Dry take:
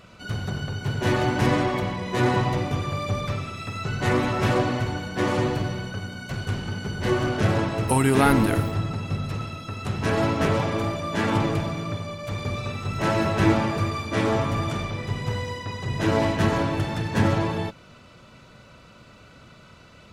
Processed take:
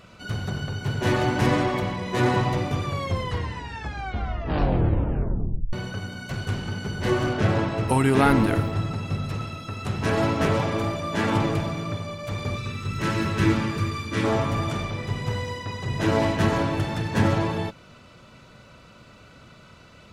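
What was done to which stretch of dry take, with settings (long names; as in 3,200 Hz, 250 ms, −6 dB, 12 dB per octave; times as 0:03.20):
0:02.85: tape stop 2.88 s
0:07.33–0:08.76: high-shelf EQ 8,400 Hz −11.5 dB
0:12.57–0:14.24: parametric band 700 Hz −14.5 dB 0.67 octaves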